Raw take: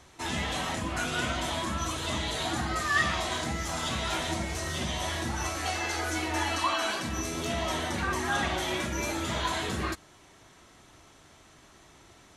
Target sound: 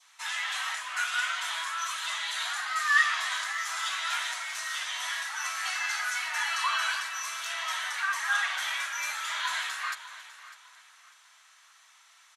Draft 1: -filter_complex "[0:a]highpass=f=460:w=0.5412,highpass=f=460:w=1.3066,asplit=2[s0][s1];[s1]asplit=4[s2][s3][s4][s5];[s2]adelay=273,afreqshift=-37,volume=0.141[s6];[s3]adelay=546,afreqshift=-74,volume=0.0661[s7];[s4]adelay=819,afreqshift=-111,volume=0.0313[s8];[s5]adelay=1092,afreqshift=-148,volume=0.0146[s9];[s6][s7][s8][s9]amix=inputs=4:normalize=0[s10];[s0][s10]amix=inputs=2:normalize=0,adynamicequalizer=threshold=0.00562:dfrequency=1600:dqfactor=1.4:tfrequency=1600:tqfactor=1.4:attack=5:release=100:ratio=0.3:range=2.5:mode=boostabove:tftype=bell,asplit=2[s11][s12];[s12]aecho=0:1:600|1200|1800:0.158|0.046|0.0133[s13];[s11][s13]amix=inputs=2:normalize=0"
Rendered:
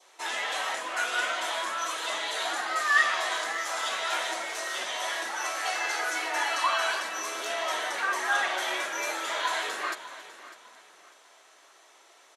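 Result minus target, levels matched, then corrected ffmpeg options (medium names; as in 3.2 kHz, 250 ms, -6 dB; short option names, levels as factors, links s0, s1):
500 Hz band +17.5 dB
-filter_complex "[0:a]highpass=f=1100:w=0.5412,highpass=f=1100:w=1.3066,asplit=2[s0][s1];[s1]asplit=4[s2][s3][s4][s5];[s2]adelay=273,afreqshift=-37,volume=0.141[s6];[s3]adelay=546,afreqshift=-74,volume=0.0661[s7];[s4]adelay=819,afreqshift=-111,volume=0.0313[s8];[s5]adelay=1092,afreqshift=-148,volume=0.0146[s9];[s6][s7][s8][s9]amix=inputs=4:normalize=0[s10];[s0][s10]amix=inputs=2:normalize=0,adynamicequalizer=threshold=0.00562:dfrequency=1600:dqfactor=1.4:tfrequency=1600:tqfactor=1.4:attack=5:release=100:ratio=0.3:range=2.5:mode=boostabove:tftype=bell,asplit=2[s11][s12];[s12]aecho=0:1:600|1200|1800:0.158|0.046|0.0133[s13];[s11][s13]amix=inputs=2:normalize=0"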